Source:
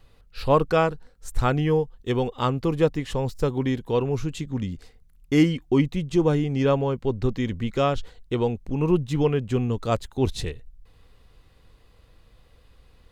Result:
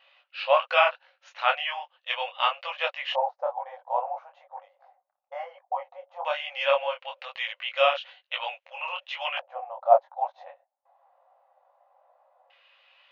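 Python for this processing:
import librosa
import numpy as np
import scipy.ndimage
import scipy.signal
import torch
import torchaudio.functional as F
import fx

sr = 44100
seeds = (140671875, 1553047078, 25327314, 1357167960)

y = fx.filter_lfo_lowpass(x, sr, shape='square', hz=0.16, low_hz=780.0, high_hz=2800.0, q=3.9)
y = fx.brickwall_bandpass(y, sr, low_hz=520.0, high_hz=6900.0)
y = fx.detune_double(y, sr, cents=37)
y = y * librosa.db_to_amplitude(4.0)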